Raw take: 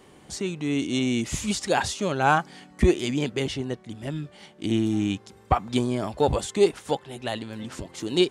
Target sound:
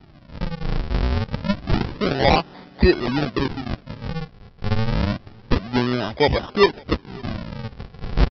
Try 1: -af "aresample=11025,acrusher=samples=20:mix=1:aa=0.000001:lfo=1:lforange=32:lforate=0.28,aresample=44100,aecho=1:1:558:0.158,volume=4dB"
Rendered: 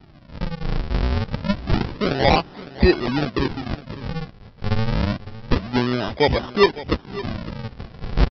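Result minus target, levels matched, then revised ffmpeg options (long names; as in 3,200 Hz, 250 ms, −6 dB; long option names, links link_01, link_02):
echo-to-direct +11 dB
-af "aresample=11025,acrusher=samples=20:mix=1:aa=0.000001:lfo=1:lforange=32:lforate=0.28,aresample=44100,aecho=1:1:558:0.0447,volume=4dB"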